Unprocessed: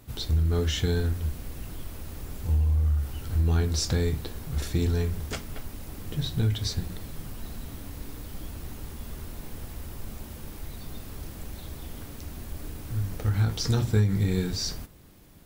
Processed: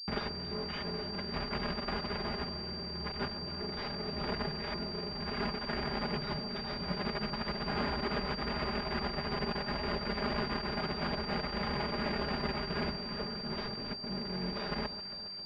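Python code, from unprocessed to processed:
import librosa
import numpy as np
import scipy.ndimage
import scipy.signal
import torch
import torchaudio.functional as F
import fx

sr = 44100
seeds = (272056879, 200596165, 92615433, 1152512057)

y = fx.octave_divider(x, sr, octaves=2, level_db=-4.0)
y = np.repeat(y[::3], 3)[:len(y)]
y = fx.quant_companded(y, sr, bits=2)
y = fx.over_compress(y, sr, threshold_db=-29.0, ratio=-0.5)
y = scipy.signal.sosfilt(scipy.signal.butter(2, 54.0, 'highpass', fs=sr, output='sos'), y)
y = fx.low_shelf(y, sr, hz=130.0, db=-7.0)
y = y + 0.97 * np.pad(y, (int(4.9 * sr / 1000.0), 0))[:len(y)]
y = fx.echo_alternate(y, sr, ms=135, hz=1400.0, feedback_pct=80, wet_db=-12)
y = fx.pwm(y, sr, carrier_hz=4700.0)
y = y * librosa.db_to_amplitude(-4.5)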